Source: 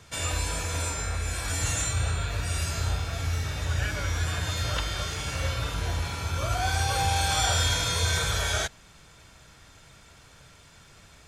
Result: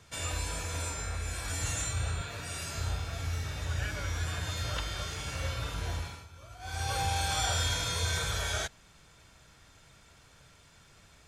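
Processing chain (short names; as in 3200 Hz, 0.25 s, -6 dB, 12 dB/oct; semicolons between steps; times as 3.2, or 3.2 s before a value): 2.21–2.75 HPF 130 Hz 12 dB/oct; 5.95–6.91 dip -16.5 dB, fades 0.32 s; gain -5.5 dB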